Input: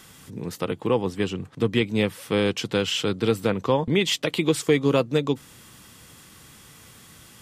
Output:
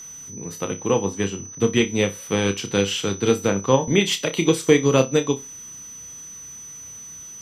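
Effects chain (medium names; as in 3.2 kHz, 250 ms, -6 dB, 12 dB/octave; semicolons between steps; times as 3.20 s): flutter echo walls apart 5.2 m, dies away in 0.25 s; whistle 6 kHz -33 dBFS; upward expansion 1.5:1, over -30 dBFS; trim +4.5 dB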